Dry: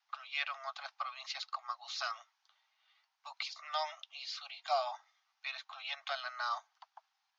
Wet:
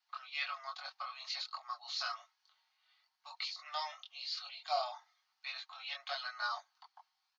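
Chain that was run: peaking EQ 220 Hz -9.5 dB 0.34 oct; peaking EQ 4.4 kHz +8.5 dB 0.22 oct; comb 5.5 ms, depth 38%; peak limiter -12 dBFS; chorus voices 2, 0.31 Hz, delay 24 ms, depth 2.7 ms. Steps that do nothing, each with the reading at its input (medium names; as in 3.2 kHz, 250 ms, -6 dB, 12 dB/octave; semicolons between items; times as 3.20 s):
peaking EQ 220 Hz: input has nothing below 540 Hz; peak limiter -12 dBFS: peak at its input -18.5 dBFS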